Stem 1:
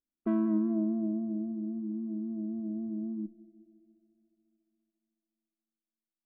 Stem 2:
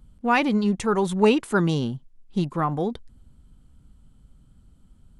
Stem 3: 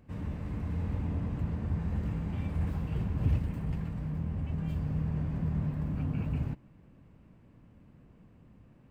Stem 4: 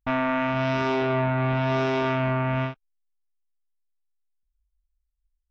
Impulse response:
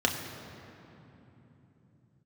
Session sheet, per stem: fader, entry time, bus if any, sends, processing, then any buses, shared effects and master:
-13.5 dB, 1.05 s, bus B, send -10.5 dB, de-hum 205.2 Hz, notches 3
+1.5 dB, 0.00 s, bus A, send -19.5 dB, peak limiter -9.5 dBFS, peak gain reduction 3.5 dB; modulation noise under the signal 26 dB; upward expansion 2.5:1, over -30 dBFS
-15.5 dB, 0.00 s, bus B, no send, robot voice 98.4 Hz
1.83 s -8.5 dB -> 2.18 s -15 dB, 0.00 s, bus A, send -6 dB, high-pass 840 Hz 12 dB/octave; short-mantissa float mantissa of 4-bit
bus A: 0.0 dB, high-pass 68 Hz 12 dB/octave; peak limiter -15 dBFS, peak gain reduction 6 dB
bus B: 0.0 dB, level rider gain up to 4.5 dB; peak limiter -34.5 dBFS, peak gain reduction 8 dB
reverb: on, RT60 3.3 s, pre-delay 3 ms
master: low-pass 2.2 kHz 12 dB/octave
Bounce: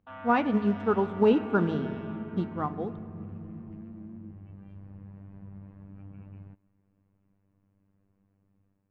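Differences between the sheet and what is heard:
stem 1: send off; stem 4 -8.5 dB -> -20.0 dB

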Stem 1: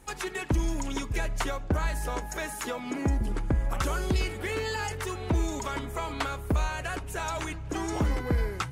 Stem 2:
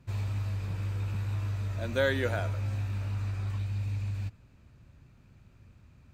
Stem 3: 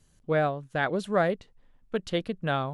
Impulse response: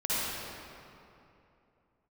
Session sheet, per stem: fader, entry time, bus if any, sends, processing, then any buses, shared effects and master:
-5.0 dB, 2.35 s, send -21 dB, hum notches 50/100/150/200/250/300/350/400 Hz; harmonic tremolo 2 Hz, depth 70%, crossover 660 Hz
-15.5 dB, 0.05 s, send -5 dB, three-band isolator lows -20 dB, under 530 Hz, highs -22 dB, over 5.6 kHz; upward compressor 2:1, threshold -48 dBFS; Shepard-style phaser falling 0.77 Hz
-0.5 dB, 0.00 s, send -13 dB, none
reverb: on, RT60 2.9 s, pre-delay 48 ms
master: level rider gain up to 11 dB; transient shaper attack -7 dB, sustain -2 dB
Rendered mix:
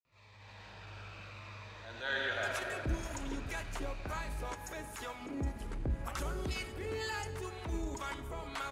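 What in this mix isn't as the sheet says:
stem 1 -5.0 dB -> -16.0 dB; stem 3: muted

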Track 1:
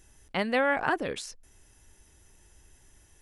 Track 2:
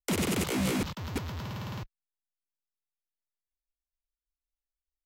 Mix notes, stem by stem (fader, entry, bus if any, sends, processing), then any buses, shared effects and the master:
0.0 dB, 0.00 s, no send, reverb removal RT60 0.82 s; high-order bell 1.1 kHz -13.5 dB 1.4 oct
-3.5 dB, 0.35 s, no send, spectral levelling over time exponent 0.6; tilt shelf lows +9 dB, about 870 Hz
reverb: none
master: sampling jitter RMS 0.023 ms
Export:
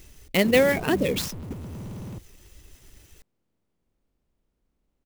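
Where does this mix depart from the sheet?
stem 1 0.0 dB -> +10.0 dB; stem 2 -3.5 dB -> -11.0 dB

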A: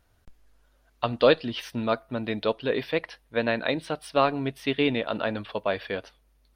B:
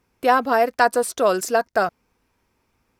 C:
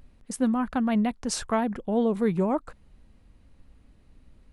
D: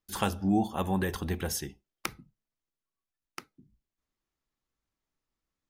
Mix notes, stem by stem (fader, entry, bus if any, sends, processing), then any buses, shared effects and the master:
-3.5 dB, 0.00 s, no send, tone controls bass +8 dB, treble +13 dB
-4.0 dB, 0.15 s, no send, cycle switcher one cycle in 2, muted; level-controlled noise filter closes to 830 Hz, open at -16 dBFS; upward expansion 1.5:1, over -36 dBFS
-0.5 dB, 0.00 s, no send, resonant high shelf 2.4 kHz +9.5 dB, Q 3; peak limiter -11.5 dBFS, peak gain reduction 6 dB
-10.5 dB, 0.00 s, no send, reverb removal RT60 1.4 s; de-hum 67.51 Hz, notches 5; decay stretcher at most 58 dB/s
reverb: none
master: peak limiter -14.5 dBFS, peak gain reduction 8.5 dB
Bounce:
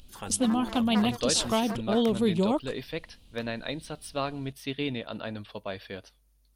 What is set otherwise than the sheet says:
stem A -3.5 dB -> -10.0 dB; stem B -4.0 dB -> -15.5 dB

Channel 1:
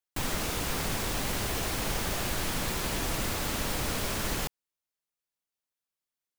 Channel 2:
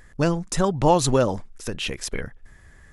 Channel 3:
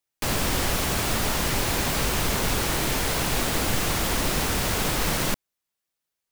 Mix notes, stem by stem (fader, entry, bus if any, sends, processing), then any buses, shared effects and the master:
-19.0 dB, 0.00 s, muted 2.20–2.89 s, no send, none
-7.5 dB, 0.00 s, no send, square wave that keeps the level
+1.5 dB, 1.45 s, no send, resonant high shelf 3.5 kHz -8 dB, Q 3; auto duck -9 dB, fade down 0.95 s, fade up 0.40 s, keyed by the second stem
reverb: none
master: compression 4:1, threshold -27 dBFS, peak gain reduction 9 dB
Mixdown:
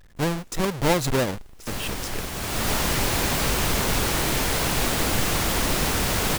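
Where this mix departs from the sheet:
stem 1 -19.0 dB -> -28.5 dB; stem 3: missing resonant high shelf 3.5 kHz -8 dB, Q 3; master: missing compression 4:1, threshold -27 dBFS, peak gain reduction 9 dB

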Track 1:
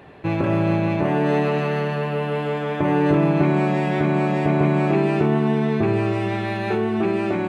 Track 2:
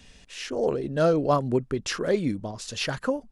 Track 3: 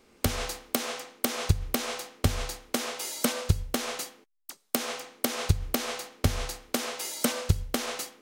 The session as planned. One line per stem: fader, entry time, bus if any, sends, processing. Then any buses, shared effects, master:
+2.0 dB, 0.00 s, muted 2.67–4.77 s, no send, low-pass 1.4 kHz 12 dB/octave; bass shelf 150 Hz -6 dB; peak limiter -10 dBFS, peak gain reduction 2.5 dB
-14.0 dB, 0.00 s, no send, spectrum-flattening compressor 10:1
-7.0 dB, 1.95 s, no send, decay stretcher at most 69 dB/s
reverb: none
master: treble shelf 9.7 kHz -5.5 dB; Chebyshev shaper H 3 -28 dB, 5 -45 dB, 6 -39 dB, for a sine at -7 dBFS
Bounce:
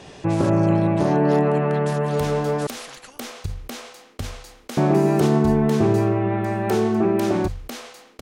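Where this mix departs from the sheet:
stem 1: missing bass shelf 150 Hz -6 dB; master: missing Chebyshev shaper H 3 -28 dB, 5 -45 dB, 6 -39 dB, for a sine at -7 dBFS

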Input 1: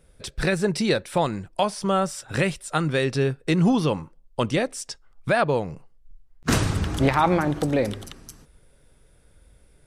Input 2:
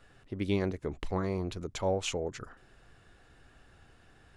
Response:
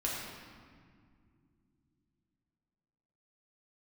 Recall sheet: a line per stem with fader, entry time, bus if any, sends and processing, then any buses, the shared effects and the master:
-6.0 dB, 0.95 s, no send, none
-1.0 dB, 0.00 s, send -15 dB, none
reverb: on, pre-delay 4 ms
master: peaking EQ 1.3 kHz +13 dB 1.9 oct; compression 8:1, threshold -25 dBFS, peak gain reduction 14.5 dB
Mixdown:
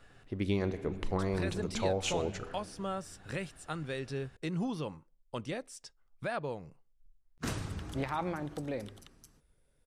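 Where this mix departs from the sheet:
stem 1 -6.0 dB -> -15.0 dB; master: missing peaking EQ 1.3 kHz +13 dB 1.9 oct

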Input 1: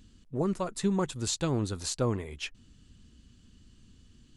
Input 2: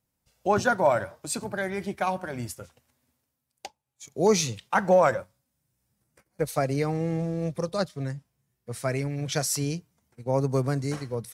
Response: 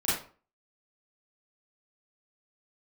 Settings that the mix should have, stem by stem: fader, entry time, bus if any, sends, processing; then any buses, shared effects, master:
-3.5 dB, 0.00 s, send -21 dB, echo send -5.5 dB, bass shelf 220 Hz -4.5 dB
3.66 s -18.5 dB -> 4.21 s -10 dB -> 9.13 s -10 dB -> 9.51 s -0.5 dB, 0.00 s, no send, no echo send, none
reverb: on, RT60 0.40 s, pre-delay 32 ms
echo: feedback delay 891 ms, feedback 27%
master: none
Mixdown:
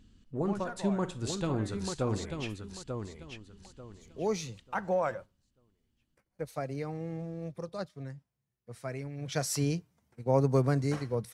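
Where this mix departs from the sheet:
stem 1: missing bass shelf 220 Hz -4.5 dB; master: extra treble shelf 5 kHz -8 dB

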